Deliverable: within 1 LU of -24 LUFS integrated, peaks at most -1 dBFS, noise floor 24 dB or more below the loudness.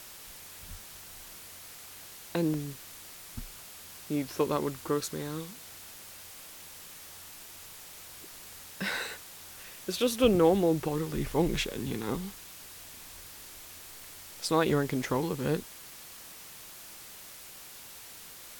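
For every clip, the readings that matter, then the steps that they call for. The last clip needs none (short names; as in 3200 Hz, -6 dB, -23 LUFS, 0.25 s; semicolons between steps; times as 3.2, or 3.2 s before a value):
dropouts 6; longest dropout 2.4 ms; noise floor -48 dBFS; noise floor target -55 dBFS; loudness -30.5 LUFS; peak -12.0 dBFS; loudness target -24.0 LUFS
-> interpolate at 2.54/4.41/5.29/10/12.13/14.7, 2.4 ms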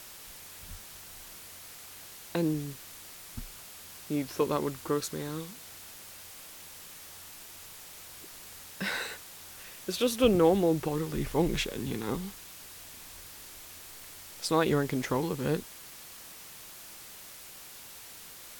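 dropouts 0; noise floor -48 dBFS; noise floor target -55 dBFS
-> noise print and reduce 7 dB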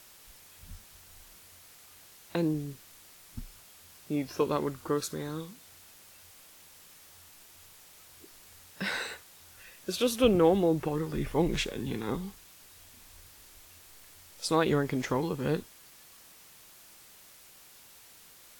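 noise floor -55 dBFS; loudness -30.5 LUFS; peak -12.0 dBFS; loudness target -24.0 LUFS
-> gain +6.5 dB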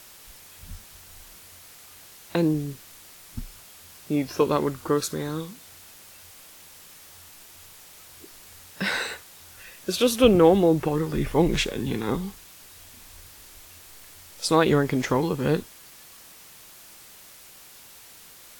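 loudness -24.0 LUFS; peak -5.5 dBFS; noise floor -48 dBFS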